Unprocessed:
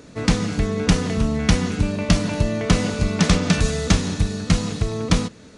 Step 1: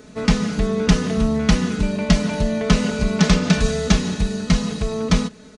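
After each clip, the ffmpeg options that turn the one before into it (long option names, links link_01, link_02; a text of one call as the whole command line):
ffmpeg -i in.wav -filter_complex "[0:a]aecho=1:1:4.7:0.71,acrossover=split=8200[link_01][link_02];[link_02]acompressor=threshold=-48dB:ratio=4:attack=1:release=60[link_03];[link_01][link_03]amix=inputs=2:normalize=0,volume=-1dB" out.wav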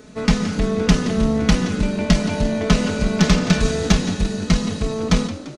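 ffmpeg -i in.wav -filter_complex "[0:a]asplit=6[link_01][link_02][link_03][link_04][link_05][link_06];[link_02]adelay=172,afreqshift=52,volume=-14dB[link_07];[link_03]adelay=344,afreqshift=104,volume=-19.5dB[link_08];[link_04]adelay=516,afreqshift=156,volume=-25dB[link_09];[link_05]adelay=688,afreqshift=208,volume=-30.5dB[link_10];[link_06]adelay=860,afreqshift=260,volume=-36.1dB[link_11];[link_01][link_07][link_08][link_09][link_10][link_11]amix=inputs=6:normalize=0,aeval=exprs='0.841*(cos(1*acos(clip(val(0)/0.841,-1,1)))-cos(1*PI/2))+0.0335*(cos(6*acos(clip(val(0)/0.841,-1,1)))-cos(6*PI/2))':channel_layout=same" out.wav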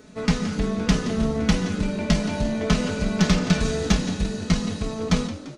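ffmpeg -i in.wav -af "flanger=delay=10:depth=4.8:regen=-55:speed=0.62:shape=sinusoidal" out.wav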